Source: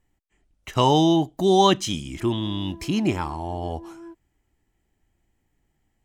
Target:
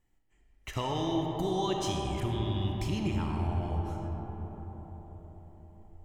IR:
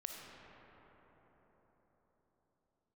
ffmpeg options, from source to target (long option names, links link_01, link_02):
-filter_complex "[0:a]asubboost=boost=8:cutoff=94,acompressor=threshold=-26dB:ratio=6[link_01];[1:a]atrim=start_sample=2205[link_02];[link_01][link_02]afir=irnorm=-1:irlink=0"